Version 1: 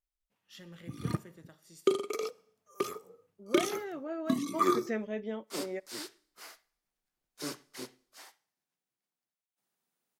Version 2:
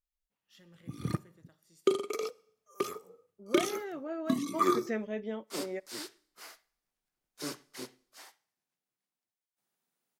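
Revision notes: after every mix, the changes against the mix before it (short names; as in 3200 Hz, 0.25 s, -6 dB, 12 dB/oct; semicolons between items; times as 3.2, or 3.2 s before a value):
first voice -8.5 dB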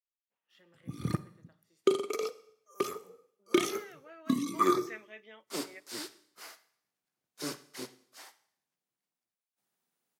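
first voice: add three-band isolator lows -15 dB, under 300 Hz, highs -13 dB, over 3400 Hz; second voice: add band-pass 2400 Hz, Q 1.4; background: send +9.0 dB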